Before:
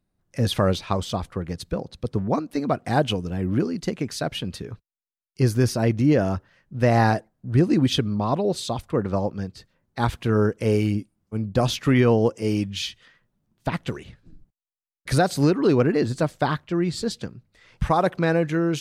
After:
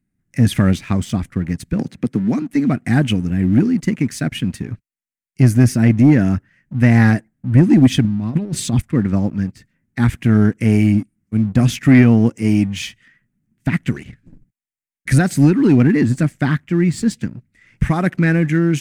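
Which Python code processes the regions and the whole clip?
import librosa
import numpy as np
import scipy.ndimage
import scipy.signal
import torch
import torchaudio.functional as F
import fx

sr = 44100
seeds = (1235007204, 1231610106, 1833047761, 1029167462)

y = fx.chain(x, sr, fx.highpass(hz=180.0, slope=12),
    fx.band_squash(depth_pct=100), at=(1.79, 2.42))
y = fx.chain(y, sr, fx.bass_treble(bass_db=4, treble_db=0),
    fx.over_compress(threshold_db=-26.0, ratio=-0.5), at=(8.04, 8.82))
y = fx.graphic_eq_10(y, sr, hz=(125, 250, 500, 1000, 2000, 4000, 8000), db=(5, 10, -9, -9, 11, -10, 5))
y = fx.leveller(y, sr, passes=1)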